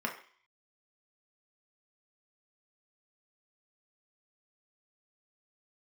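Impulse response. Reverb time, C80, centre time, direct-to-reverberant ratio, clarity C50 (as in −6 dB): 0.50 s, 13.5 dB, 18 ms, 0.5 dB, 9.5 dB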